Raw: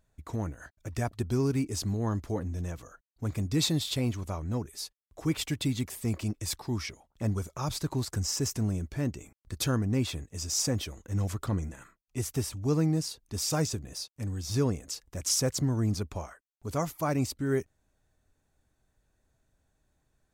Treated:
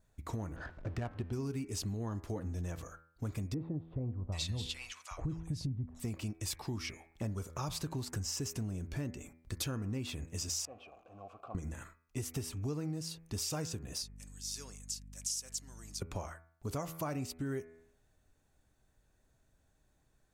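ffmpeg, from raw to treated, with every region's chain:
-filter_complex "[0:a]asettb=1/sr,asplit=3[a][b][c];[a]atrim=end=0.564[d];[b]atrim=start=0.56:end=1.33,asetpts=PTS-STARTPTS,afade=t=in:d=0.004:c=qsin,afade=t=out:st=0.766:d=0.004:c=qsin,aeval=exprs='val(0)+0.5*0.0075*sgn(val(0))':c=same,adynamicsmooth=sensitivity=6:basefreq=1.2k[e];[c]atrim=start=1.326[f];[d][e]acrossfade=d=0.004:c1=hsin:c2=qsin[g];[g][f]acrossfade=d=0.004:c1=qsin:c2=hsin,asettb=1/sr,asplit=3[h][i][j];[h]atrim=end=3.544[k];[i]atrim=start=3.54:end=6,asetpts=PTS-STARTPTS,afade=t=in:d=0.004:c=qsin,afade=t=out:st=2.456:d=0.004:c=qsin,lowpass=8.4k,asubboost=boost=8:cutoff=150,acrossover=split=1100[l][m];[m]adelay=780[n];[l][n]amix=inputs=2:normalize=0,atrim=end_sample=108486[o];[j]atrim=start=5.996[p];[k][o]acrossfade=d=0.004:c1=hsin:c2=qsin[q];[q][p]acrossfade=d=0.004:c1=qsin:c2=hsin,asettb=1/sr,asplit=3[r][s][t];[r]atrim=end=10.654[u];[s]atrim=start=10.65:end=11.55,asetpts=PTS-STARTPTS,afade=t=in:d=0.004:c=qsin,afade=t=out:st=0.896:d=0.004:c=qsin,aeval=exprs='val(0)+0.5*0.0133*sgn(val(0))':c=same,asplit=3[v][w][x];[v]bandpass=f=730:t=q:w=8,volume=0dB[y];[w]bandpass=f=1.09k:t=q:w=8,volume=-6dB[z];[x]bandpass=f=2.44k:t=q:w=8,volume=-9dB[aa];[y][z][aa]amix=inputs=3:normalize=0,highshelf=f=2k:g=-11[ab];[t]atrim=start=11.546[ac];[u][ab]acrossfade=d=0.004:c1=hsin:c2=qsin[ad];[ad][ac]acrossfade=d=0.004:c1=qsin:c2=hsin,asettb=1/sr,asplit=3[ae][af][ag];[ae]atrim=end=14.024[ah];[af]atrim=start=14.02:end=16.02,asetpts=PTS-STARTPTS,afade=t=in:d=0.004:c=qsin,afade=t=out:st=1.996:d=0.004:c=qsin,bandpass=f=7.9k:t=q:w=0.95,aeval=exprs='val(0)+0.00282*(sin(2*PI*50*n/s)+sin(2*PI*2*50*n/s)/2+sin(2*PI*3*50*n/s)/3+sin(2*PI*4*50*n/s)/4+sin(2*PI*5*50*n/s)/5)':c=same[ai];[ag]atrim=start=16.016[aj];[ah][ai]acrossfade=d=0.004:c1=hsin:c2=qsin[ak];[ak][aj]acrossfade=d=0.004:c1=qsin:c2=hsin,bandreject=f=81.98:t=h:w=4,bandreject=f=163.96:t=h:w=4,bandreject=f=245.94:t=h:w=4,bandreject=f=327.92:t=h:w=4,bandreject=f=409.9:t=h:w=4,bandreject=f=491.88:t=h:w=4,bandreject=f=573.86:t=h:w=4,bandreject=f=655.84:t=h:w=4,bandreject=f=737.82:t=h:w=4,bandreject=f=819.8:t=h:w=4,bandreject=f=901.78:t=h:w=4,bandreject=f=983.76:t=h:w=4,bandreject=f=1.06574k:t=h:w=4,bandreject=f=1.14772k:t=h:w=4,bandreject=f=1.2297k:t=h:w=4,bandreject=f=1.31168k:t=h:w=4,bandreject=f=1.39366k:t=h:w=4,bandreject=f=1.47564k:t=h:w=4,bandreject=f=1.55762k:t=h:w=4,bandreject=f=1.6396k:t=h:w=4,bandreject=f=1.72158k:t=h:w=4,bandreject=f=1.80356k:t=h:w=4,bandreject=f=1.88554k:t=h:w=4,bandreject=f=1.96752k:t=h:w=4,bandreject=f=2.0495k:t=h:w=4,bandreject=f=2.13148k:t=h:w=4,bandreject=f=2.21346k:t=h:w=4,bandreject=f=2.29544k:t=h:w=4,bandreject=f=2.37742k:t=h:w=4,bandreject=f=2.4594k:t=h:w=4,bandreject=f=2.54138k:t=h:w=4,adynamicequalizer=threshold=0.00126:dfrequency=2800:dqfactor=5.8:tfrequency=2800:tqfactor=5.8:attack=5:release=100:ratio=0.375:range=3:mode=boostabove:tftype=bell,acompressor=threshold=-36dB:ratio=6,volume=1dB"

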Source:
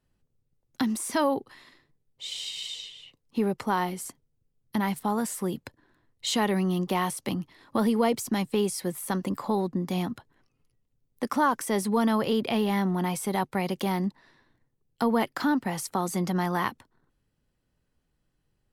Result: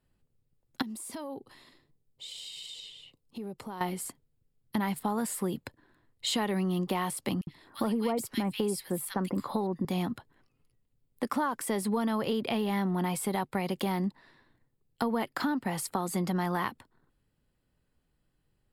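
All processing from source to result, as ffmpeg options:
-filter_complex "[0:a]asettb=1/sr,asplit=3[a][b][c];[a]atrim=end=0.824[d];[b]atrim=start=0.82:end=3.81,asetpts=PTS-STARTPTS,afade=t=in:d=0.004:c=qsin,afade=t=out:st=2.986:d=0.004:c=qsin,equalizer=f=1.7k:w=0.85:g=-7,acompressor=threshold=-40dB:ratio=3:attack=3.2:release=140:knee=1:detection=peak[e];[c]atrim=start=3.806[f];[d][e]acrossfade=d=0.004:c1=hsin:c2=qsin[g];[g][f]acrossfade=d=0.004:c1=qsin:c2=hsin,asettb=1/sr,asplit=3[h][i][j];[h]atrim=end=7.414[k];[i]atrim=start=7.41:end=9.85,asetpts=PTS-STARTPTS,afade=t=in:d=0.004:c=qsin,afade=t=out:st=2.436:d=0.004:c=qsin,bandreject=f=6.7k:w=28,acrossover=split=1800[l][m];[l]adelay=60[n];[n][m]amix=inputs=2:normalize=0,atrim=end_sample=107604[o];[j]atrim=start=9.846[p];[k][o]acrossfade=d=0.004:c1=hsin:c2=qsin[q];[q][p]acrossfade=d=0.004:c1=qsin:c2=hsin,equalizer=f=6k:w=7.7:g=-12,acompressor=threshold=-26dB:ratio=6"

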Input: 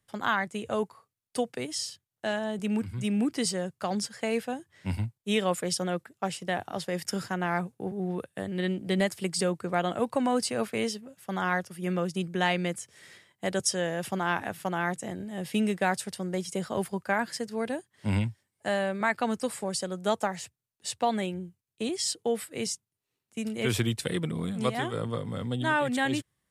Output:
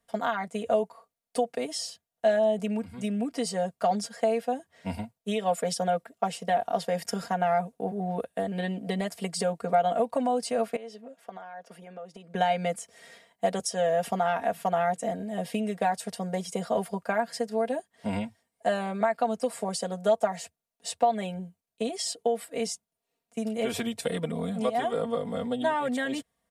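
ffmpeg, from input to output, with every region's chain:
-filter_complex "[0:a]asettb=1/sr,asplit=3[a][b][c];[a]atrim=end=10.764[d];[b]atrim=start=10.76:end=12.35,asetpts=PTS-STARTPTS,afade=t=in:d=0.004:c=qsin,afade=t=out:st=1.586:d=0.004:c=qsin,highpass=270,aemphasis=mode=reproduction:type=50kf,acompressor=threshold=-43dB:ratio=12:attack=3.2:release=140:knee=1:detection=peak[e];[c]atrim=start=12.346[f];[d][e]acrossfade=d=0.004:c1=hsin:c2=qsin[g];[g][f]acrossfade=d=0.004:c1=qsin:c2=hsin,aecho=1:1:4.3:0.91,acompressor=threshold=-25dB:ratio=6,equalizer=f=640:t=o:w=0.71:g=13.5,volume=-3dB"

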